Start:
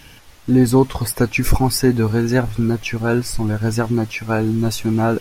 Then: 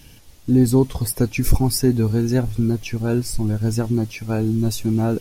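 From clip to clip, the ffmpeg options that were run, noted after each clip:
-af "equalizer=f=1.4k:w=0.5:g=-11.5"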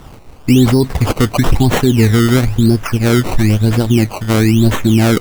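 -af "acrusher=samples=18:mix=1:aa=0.000001:lfo=1:lforange=18:lforate=1,alimiter=level_in=10.5dB:limit=-1dB:release=50:level=0:latency=1,volume=-1dB"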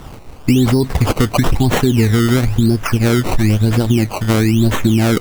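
-af "acompressor=threshold=-12dB:ratio=4,volume=2.5dB"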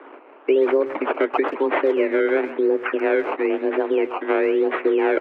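-filter_complex "[0:a]aemphasis=mode=production:type=50kf,highpass=f=170:t=q:w=0.5412,highpass=f=170:t=q:w=1.307,lowpass=f=2.3k:t=q:w=0.5176,lowpass=f=2.3k:t=q:w=0.7071,lowpass=f=2.3k:t=q:w=1.932,afreqshift=140,asplit=2[a][b];[b]adelay=130,highpass=300,lowpass=3.4k,asoftclip=type=hard:threshold=-11.5dB,volume=-13dB[c];[a][c]amix=inputs=2:normalize=0,volume=-4dB"

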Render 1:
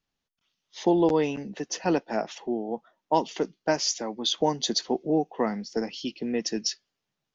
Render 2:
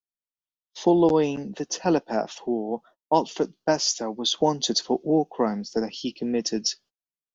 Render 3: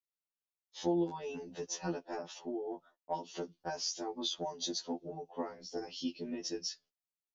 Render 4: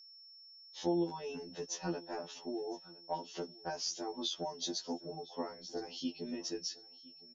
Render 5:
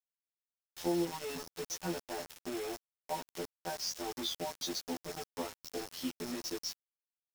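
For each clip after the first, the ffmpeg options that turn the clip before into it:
-af "agate=range=-29dB:threshold=-51dB:ratio=16:detection=peak,equalizer=f=2.1k:t=o:w=0.59:g=-8.5,volume=3dB"
-af "acompressor=threshold=-25dB:ratio=10,afftfilt=real='re*2*eq(mod(b,4),0)':imag='im*2*eq(mod(b,4),0)':win_size=2048:overlap=0.75,volume=-5.5dB"
-af "aeval=exprs='val(0)+0.00224*sin(2*PI*5400*n/s)':c=same,aecho=1:1:1011|2022:0.0794|0.0199,volume=-1dB"
-af "aeval=exprs='val(0)+0.000316*(sin(2*PI*60*n/s)+sin(2*PI*2*60*n/s)/2+sin(2*PI*3*60*n/s)/3+sin(2*PI*4*60*n/s)/4+sin(2*PI*5*60*n/s)/5)':c=same,acrusher=bits=6:mix=0:aa=0.000001"

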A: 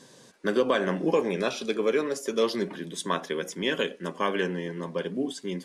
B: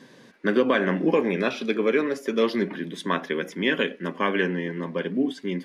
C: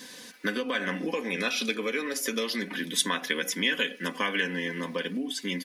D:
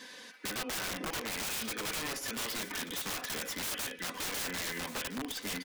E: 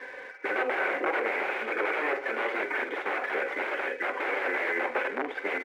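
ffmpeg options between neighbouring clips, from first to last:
-af "equalizer=f=250:t=o:w=1:g=7,equalizer=f=2k:t=o:w=1:g=8,equalizer=f=8k:t=o:w=1:g=-12"
-af "aecho=1:1:4:0.58,acompressor=threshold=-26dB:ratio=6,crystalizer=i=9.5:c=0,volume=-4dB"
-filter_complex "[0:a]asplit=2[a][b];[b]highpass=f=720:p=1,volume=14dB,asoftclip=type=tanh:threshold=-9.5dB[c];[a][c]amix=inputs=2:normalize=0,lowpass=f=2.5k:p=1,volume=-6dB,aeval=exprs='(mod(14.1*val(0)+1,2)-1)/14.1':c=same,aecho=1:1:1082:0.224,volume=-8dB"
-filter_complex "[0:a]highpass=f=330:w=0.5412,highpass=f=330:w=1.3066,equalizer=f=380:t=q:w=4:g=10,equalizer=f=550:t=q:w=4:g=8,equalizer=f=800:t=q:w=4:g=7,equalizer=f=1.5k:t=q:w=4:g=6,equalizer=f=2.2k:t=q:w=4:g=9,lowpass=f=2.2k:w=0.5412,lowpass=f=2.2k:w=1.3066,asplit=2[a][b];[b]aeval=exprs='sgn(val(0))*max(abs(val(0))-0.00266,0)':c=same,volume=-5.5dB[c];[a][c]amix=inputs=2:normalize=0,asplit=2[d][e];[e]adelay=47,volume=-13dB[f];[d][f]amix=inputs=2:normalize=0,volume=2.5dB"

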